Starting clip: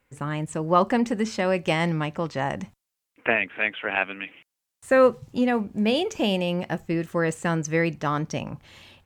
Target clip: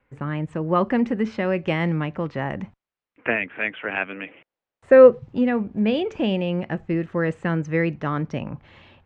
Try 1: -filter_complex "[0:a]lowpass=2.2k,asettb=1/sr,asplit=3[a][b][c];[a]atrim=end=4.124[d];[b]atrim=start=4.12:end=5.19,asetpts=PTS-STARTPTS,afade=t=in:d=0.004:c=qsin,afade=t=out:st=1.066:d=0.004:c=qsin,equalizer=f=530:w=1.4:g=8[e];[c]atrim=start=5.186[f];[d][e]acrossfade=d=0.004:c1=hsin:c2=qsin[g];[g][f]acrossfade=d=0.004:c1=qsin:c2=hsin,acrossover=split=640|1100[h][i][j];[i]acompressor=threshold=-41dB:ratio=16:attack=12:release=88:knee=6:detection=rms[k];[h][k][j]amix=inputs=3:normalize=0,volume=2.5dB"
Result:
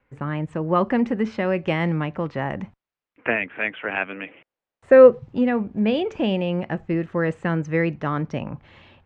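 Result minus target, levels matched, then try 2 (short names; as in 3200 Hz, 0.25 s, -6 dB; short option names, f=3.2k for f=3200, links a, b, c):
compressor: peak gain reduction -8.5 dB
-filter_complex "[0:a]lowpass=2.2k,asettb=1/sr,asplit=3[a][b][c];[a]atrim=end=4.124[d];[b]atrim=start=4.12:end=5.19,asetpts=PTS-STARTPTS,afade=t=in:d=0.004:c=qsin,afade=t=out:st=1.066:d=0.004:c=qsin,equalizer=f=530:w=1.4:g=8[e];[c]atrim=start=5.186[f];[d][e]acrossfade=d=0.004:c1=hsin:c2=qsin[g];[g][f]acrossfade=d=0.004:c1=qsin:c2=hsin,acrossover=split=640|1100[h][i][j];[i]acompressor=threshold=-50dB:ratio=16:attack=12:release=88:knee=6:detection=rms[k];[h][k][j]amix=inputs=3:normalize=0,volume=2.5dB"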